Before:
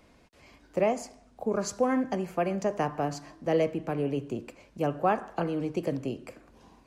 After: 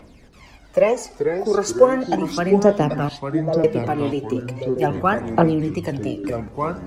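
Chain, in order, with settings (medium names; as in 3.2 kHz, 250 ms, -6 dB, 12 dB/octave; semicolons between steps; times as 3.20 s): 3.09–3.64 s: band-pass filter 670 Hz, Q 3.8; phaser 0.37 Hz, delay 3 ms, feedback 64%; ever faster or slower copies 232 ms, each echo -4 st, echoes 3, each echo -6 dB; trim +6.5 dB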